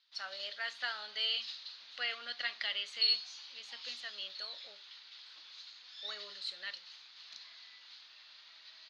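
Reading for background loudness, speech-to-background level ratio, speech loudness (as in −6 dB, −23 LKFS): −41.5 LKFS, 3.0 dB, −38.5 LKFS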